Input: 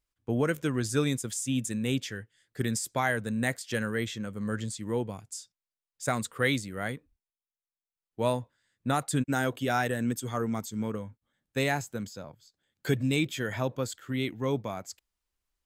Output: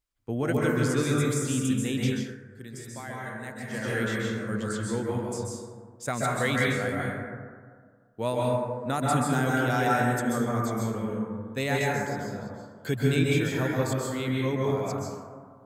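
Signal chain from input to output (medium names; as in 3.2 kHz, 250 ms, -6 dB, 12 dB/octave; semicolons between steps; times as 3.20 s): 13.37–14.05 s: treble shelf 9 kHz +6.5 dB; plate-style reverb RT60 1.8 s, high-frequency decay 0.3×, pre-delay 120 ms, DRR -4.5 dB; 2.13–3.91 s: dip -11.5 dB, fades 0.24 s; trim -2 dB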